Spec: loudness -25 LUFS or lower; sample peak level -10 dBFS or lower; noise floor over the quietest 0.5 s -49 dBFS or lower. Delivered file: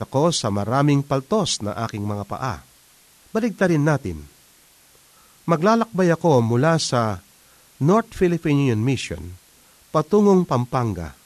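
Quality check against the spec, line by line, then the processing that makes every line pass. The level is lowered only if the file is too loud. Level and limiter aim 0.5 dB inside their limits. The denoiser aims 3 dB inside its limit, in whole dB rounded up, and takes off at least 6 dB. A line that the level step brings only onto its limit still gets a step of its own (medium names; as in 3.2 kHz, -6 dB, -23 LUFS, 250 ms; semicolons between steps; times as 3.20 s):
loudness -20.5 LUFS: fail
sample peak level -5.5 dBFS: fail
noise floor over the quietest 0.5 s -54 dBFS: pass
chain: trim -5 dB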